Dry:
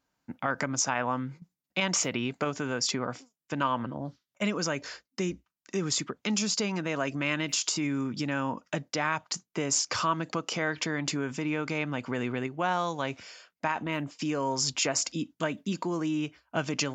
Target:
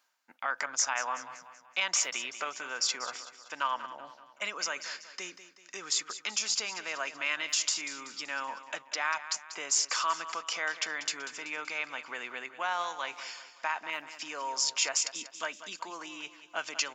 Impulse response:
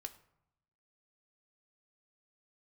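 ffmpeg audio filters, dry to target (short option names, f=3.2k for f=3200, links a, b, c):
-af "areverse,acompressor=mode=upward:threshold=-34dB:ratio=2.5,areverse,highpass=970,aecho=1:1:190|380|570|760|950:0.224|0.105|0.0495|0.0232|0.0109"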